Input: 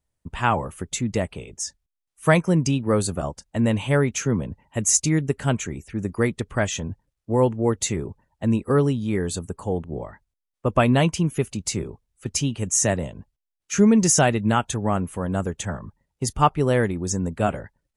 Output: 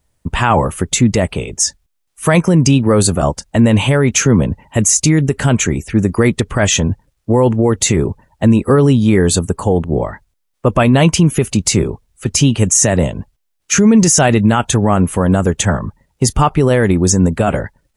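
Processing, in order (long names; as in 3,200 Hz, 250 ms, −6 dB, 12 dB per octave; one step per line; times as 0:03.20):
boost into a limiter +16.5 dB
level −1.5 dB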